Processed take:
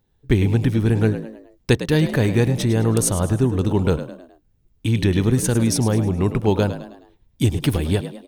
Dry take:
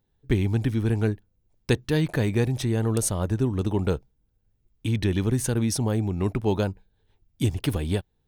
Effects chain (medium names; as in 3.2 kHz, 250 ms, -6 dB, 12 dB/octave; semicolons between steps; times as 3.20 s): frequency-shifting echo 105 ms, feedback 43%, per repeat +58 Hz, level -12 dB; trim +5.5 dB